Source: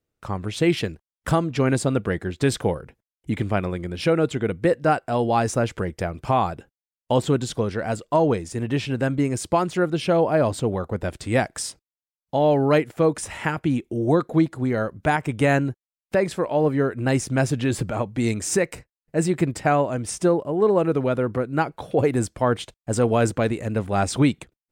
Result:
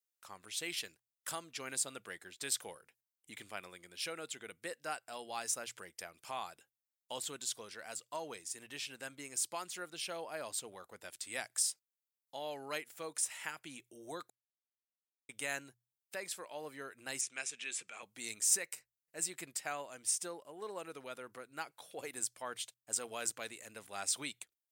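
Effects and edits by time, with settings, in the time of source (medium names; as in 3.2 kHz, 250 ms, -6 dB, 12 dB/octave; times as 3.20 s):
14.30–15.29 s: mute
17.21–18.03 s: cabinet simulation 290–8600 Hz, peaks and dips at 300 Hz -8 dB, 600 Hz -8 dB, 900 Hz -6 dB, 2.4 kHz +8 dB, 4.6 kHz -7 dB
whole clip: differentiator; hum notches 60/120 Hz; trim -2.5 dB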